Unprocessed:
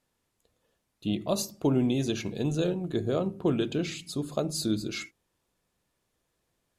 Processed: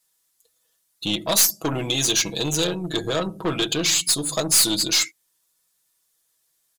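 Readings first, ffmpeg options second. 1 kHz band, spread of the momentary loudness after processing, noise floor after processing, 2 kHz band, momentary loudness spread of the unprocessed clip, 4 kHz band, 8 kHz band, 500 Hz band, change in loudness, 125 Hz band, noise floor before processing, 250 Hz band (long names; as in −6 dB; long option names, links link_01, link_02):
+9.0 dB, 10 LU, −70 dBFS, +12.5 dB, 8 LU, +17.0 dB, +20.0 dB, +2.5 dB, +9.5 dB, +0.5 dB, −79 dBFS, +0.5 dB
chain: -filter_complex "[0:a]afftdn=noise_reduction=17:noise_floor=-52,equalizer=frequency=2500:width=2.3:gain=-5,aecho=1:1:6.2:0.72,crystalizer=i=7:c=0,asplit=2[link_01][link_02];[link_02]acompressor=threshold=-32dB:ratio=6,volume=1dB[link_03];[link_01][link_03]amix=inputs=2:normalize=0,aeval=exprs='(tanh(7.94*val(0)+0.4)-tanh(0.4))/7.94':channel_layout=same,bass=frequency=250:gain=-3,treble=frequency=4000:gain=-1,acrossover=split=820[link_04][link_05];[link_05]acontrast=68[link_06];[link_04][link_06]amix=inputs=2:normalize=0"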